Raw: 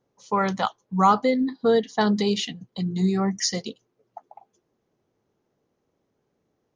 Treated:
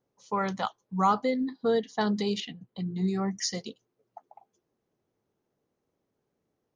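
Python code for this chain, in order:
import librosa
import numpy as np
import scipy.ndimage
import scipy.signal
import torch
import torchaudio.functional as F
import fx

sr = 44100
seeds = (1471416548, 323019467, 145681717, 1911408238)

y = fx.lowpass(x, sr, hz=3400.0, slope=12, at=(2.4, 3.08))
y = y * 10.0 ** (-6.0 / 20.0)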